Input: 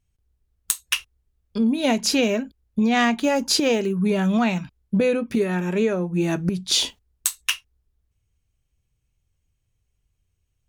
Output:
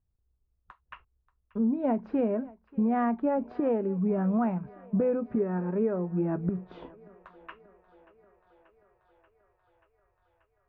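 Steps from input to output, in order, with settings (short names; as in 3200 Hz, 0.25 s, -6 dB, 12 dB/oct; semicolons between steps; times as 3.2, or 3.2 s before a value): LPF 1300 Hz 24 dB/oct; on a send: thinning echo 0.584 s, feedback 81%, high-pass 360 Hz, level -20.5 dB; on the sum: gain -6 dB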